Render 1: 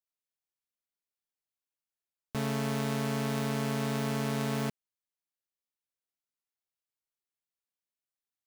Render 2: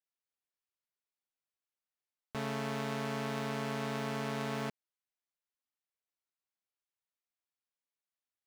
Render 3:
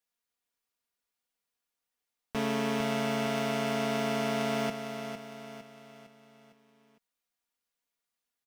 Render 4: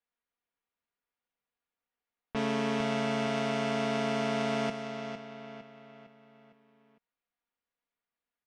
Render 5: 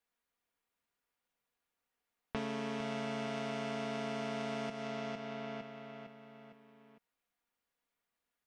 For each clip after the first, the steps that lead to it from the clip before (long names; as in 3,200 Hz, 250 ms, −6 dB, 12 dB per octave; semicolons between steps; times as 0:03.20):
low-pass filter 3,100 Hz 6 dB per octave; low-shelf EQ 360 Hz −9 dB
comb filter 4.2 ms, depth 56%; repeating echo 456 ms, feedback 46%, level −8 dB; level +5 dB
low-pass that shuts in the quiet parts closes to 2,600 Hz, open at −28 dBFS; Bessel low-pass filter 6,400 Hz, order 6
downward compressor 5 to 1, threshold −40 dBFS, peak gain reduction 12.5 dB; level +3.5 dB